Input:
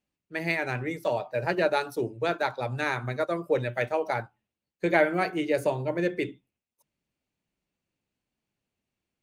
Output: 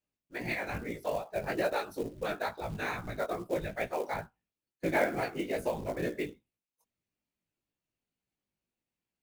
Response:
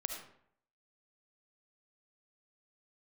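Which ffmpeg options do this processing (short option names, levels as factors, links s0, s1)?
-af "afftfilt=real='hypot(re,im)*cos(2*PI*random(0))':imag='hypot(re,im)*sin(2*PI*random(1))':win_size=512:overlap=0.75,flanger=delay=16.5:depth=3.9:speed=2.3,acrusher=bits=5:mode=log:mix=0:aa=0.000001,volume=1.33"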